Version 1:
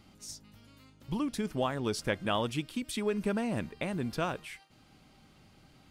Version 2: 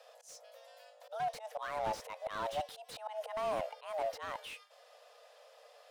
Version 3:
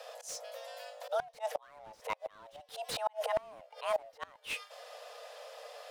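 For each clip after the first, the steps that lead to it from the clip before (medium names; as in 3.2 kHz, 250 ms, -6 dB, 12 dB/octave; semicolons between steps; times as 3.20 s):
slow attack 210 ms; frequency shift +440 Hz; slew-rate limiter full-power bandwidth 22 Hz
inverted gate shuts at -31 dBFS, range -27 dB; trim +10.5 dB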